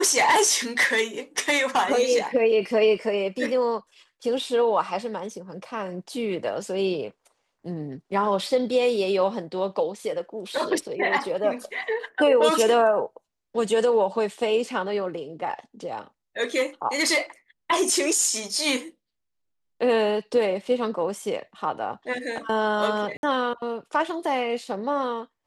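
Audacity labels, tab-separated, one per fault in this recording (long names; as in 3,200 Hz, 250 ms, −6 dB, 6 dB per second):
23.170000	23.230000	drop-out 61 ms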